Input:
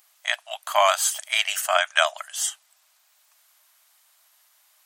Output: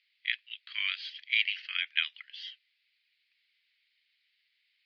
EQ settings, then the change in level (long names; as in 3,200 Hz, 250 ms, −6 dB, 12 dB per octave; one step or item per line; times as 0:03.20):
elliptic high-pass filter 2,100 Hz, stop band 70 dB
elliptic low-pass filter 4,700 Hz, stop band 40 dB
high-frequency loss of the air 270 metres
+1.0 dB